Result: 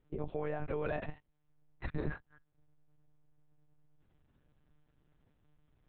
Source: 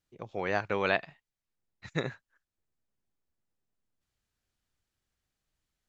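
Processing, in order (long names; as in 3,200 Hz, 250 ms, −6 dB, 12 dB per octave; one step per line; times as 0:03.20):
tilt shelving filter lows +9 dB, about 1,200 Hz
brickwall limiter −34.5 dBFS, peak gain reduction 23.5 dB
one-pitch LPC vocoder at 8 kHz 150 Hz
level +7.5 dB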